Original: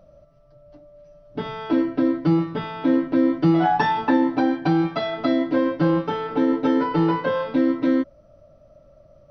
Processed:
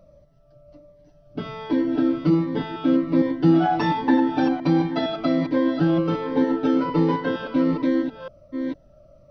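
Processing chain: reverse delay 0.46 s, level -7 dB; cascading phaser falling 1.3 Hz

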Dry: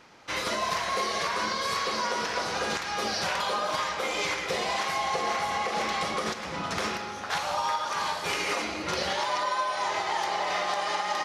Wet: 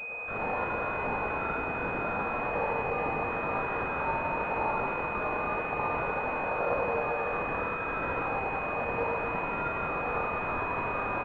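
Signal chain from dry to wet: random spectral dropouts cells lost 35%; bell 86 Hz +15 dB 0.77 oct; in parallel at -8 dB: sine folder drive 18 dB, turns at -17.5 dBFS; on the sum: spring tank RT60 1.6 s, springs 47/54 ms, chirp 45 ms, DRR -1 dB; frequency shift +380 Hz; on a send: echo 78 ms -3.5 dB; on the sum: chorus 0.85 Hz, delay 16.5 ms, depth 6.6 ms; pulse-width modulation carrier 2500 Hz; gain -2.5 dB

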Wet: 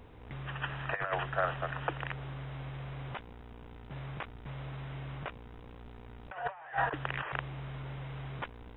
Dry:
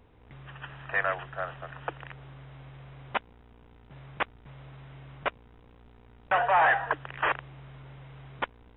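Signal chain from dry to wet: negative-ratio compressor -32 dBFS, ratio -0.5

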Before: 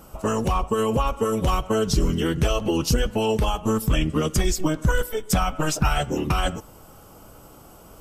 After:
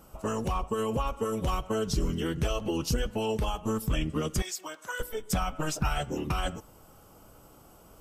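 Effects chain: 4.42–5 HPF 820 Hz 12 dB/oct; gain -7.5 dB

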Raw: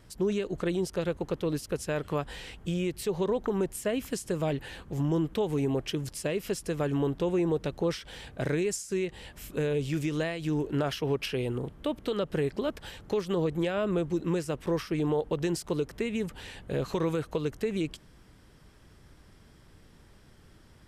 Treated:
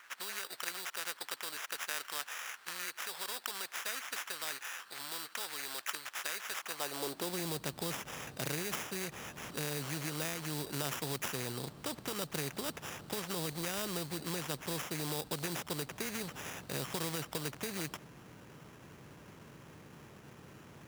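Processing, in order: sample-rate reducer 4300 Hz, jitter 0%; high-pass sweep 1500 Hz -> 140 Hz, 6.56–7.51; short-mantissa float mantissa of 4-bit; spectral compressor 2:1; gain -1.5 dB

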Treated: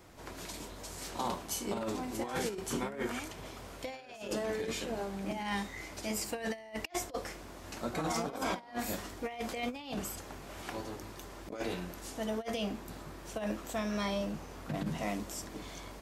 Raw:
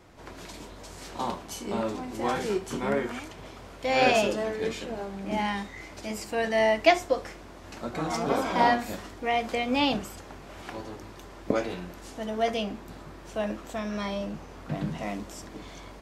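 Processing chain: negative-ratio compressor -30 dBFS, ratio -0.5; high shelf 7900 Hz +11.5 dB; gain -5.5 dB

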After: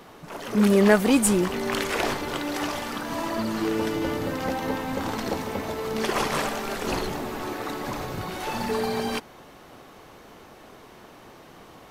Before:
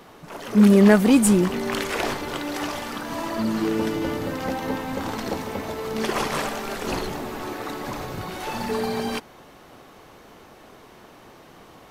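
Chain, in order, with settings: dynamic EQ 200 Hz, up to -6 dB, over -29 dBFS, Q 1.1

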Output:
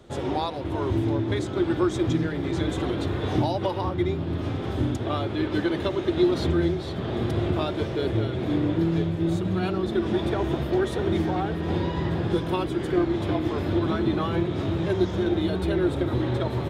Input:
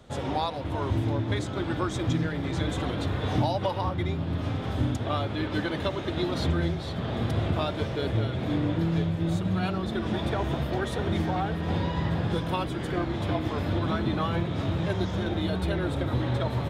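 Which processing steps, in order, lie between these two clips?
bell 360 Hz +10.5 dB 0.39 oct

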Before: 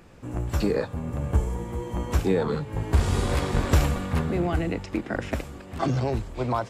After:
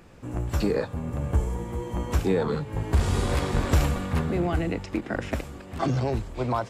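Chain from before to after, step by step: soft clip -10 dBFS, distortion -24 dB; ending taper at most 370 dB/s

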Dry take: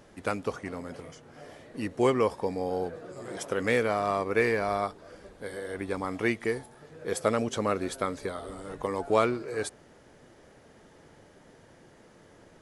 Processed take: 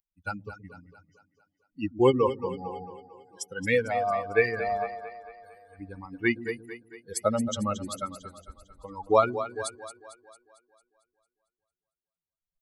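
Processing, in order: per-bin expansion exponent 3; split-band echo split 310 Hz, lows 0.123 s, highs 0.225 s, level -11.5 dB; gain +7.5 dB

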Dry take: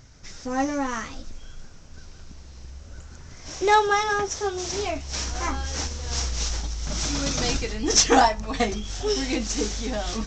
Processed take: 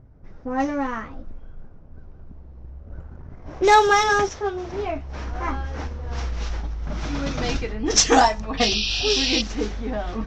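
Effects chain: 2.86–4.29 sample leveller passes 1; 8.57–9.42 painted sound noise 2400–5900 Hz -24 dBFS; low-pass opened by the level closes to 650 Hz, open at -14.5 dBFS; gain +1.5 dB

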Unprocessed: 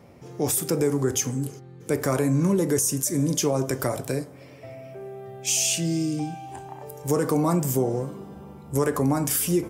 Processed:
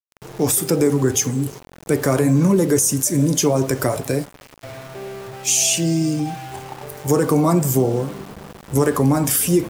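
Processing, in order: bin magnitudes rounded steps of 15 dB; band noise 87–1000 Hz -59 dBFS; sample gate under -40 dBFS; gain +6.5 dB

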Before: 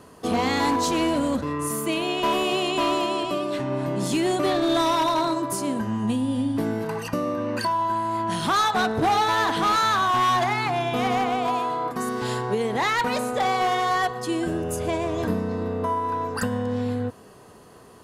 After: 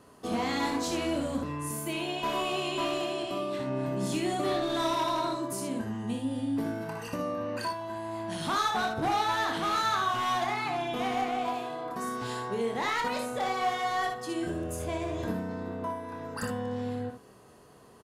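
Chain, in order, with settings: early reflections 26 ms -7.5 dB, 61 ms -6.5 dB, 76 ms -8.5 dB; gain -8.5 dB

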